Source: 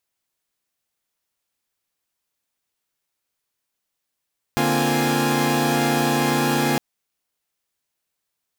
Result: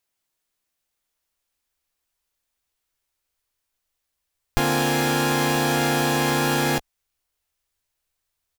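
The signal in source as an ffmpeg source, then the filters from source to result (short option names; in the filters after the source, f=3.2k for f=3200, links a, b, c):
-f lavfi -i "aevalsrc='0.0794*((2*mod(146.83*t,1)-1)+(2*mod(233.08*t,1)-1)+(2*mod(261.63*t,1)-1)+(2*mod(349.23*t,1)-1)+(2*mod(830.61*t,1)-1))':d=2.21:s=44100"
-filter_complex "[0:a]asubboost=boost=9:cutoff=62,asplit=2[a][b];[b]adelay=15,volume=-12.5dB[c];[a][c]amix=inputs=2:normalize=0"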